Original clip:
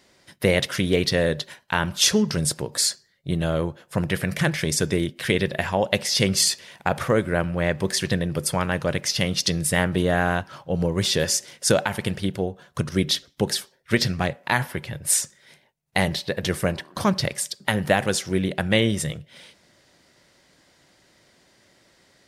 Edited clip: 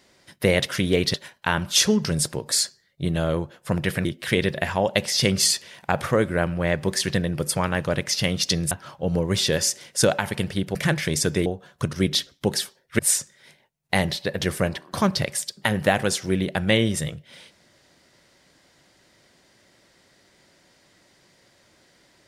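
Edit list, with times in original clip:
1.14–1.40 s: delete
4.31–5.02 s: move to 12.42 s
9.68–10.38 s: delete
13.95–15.02 s: delete

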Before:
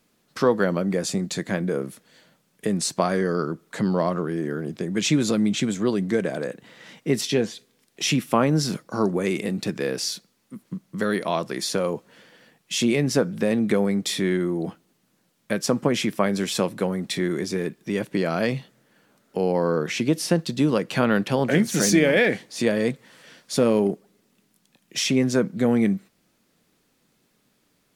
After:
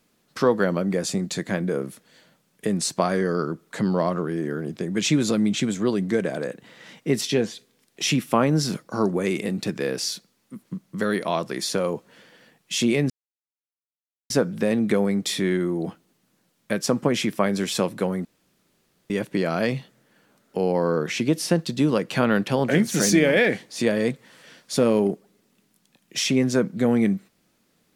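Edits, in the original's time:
13.10 s: insert silence 1.20 s
17.05–17.90 s: room tone

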